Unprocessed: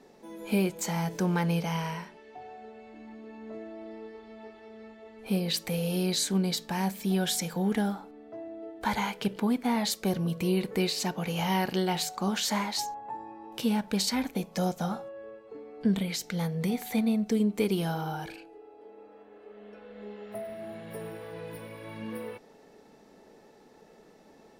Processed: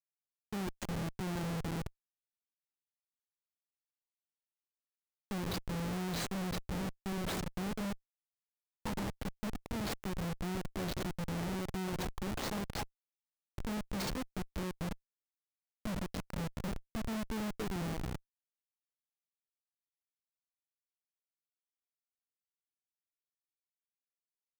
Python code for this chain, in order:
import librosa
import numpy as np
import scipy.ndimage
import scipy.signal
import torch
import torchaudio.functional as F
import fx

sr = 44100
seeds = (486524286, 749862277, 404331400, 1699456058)

y = fx.reverse_delay(x, sr, ms=260, wet_db=-13.0)
y = fx.highpass(y, sr, hz=52.0, slope=6)
y = fx.notch_comb(y, sr, f0_hz=240.0)
y = fx.cheby_harmonics(y, sr, harmonics=(2, 3, 4, 7), levels_db=(-12, -14, -41, -23), full_scale_db=-16.0)
y = fx.schmitt(y, sr, flips_db=-42.5)
y = y * librosa.db_to_amplitude(4.5)